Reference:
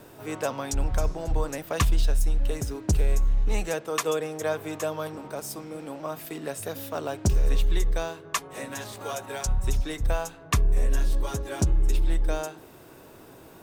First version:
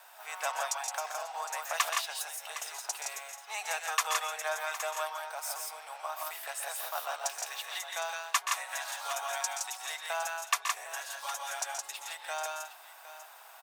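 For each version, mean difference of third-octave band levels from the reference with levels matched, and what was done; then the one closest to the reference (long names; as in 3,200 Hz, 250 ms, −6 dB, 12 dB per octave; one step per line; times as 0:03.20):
16.5 dB: elliptic high-pass filter 730 Hz, stop band 70 dB
multi-tap delay 125/142/167/761 ms −9.5/−11/−3.5/−13.5 dB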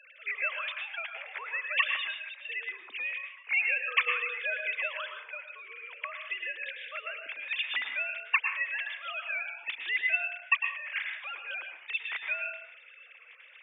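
23.0 dB: three sine waves on the formant tracks
high-pass with resonance 2,300 Hz, resonance Q 3.9
dense smooth reverb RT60 0.53 s, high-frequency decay 0.65×, pre-delay 95 ms, DRR 4 dB
level −5 dB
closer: first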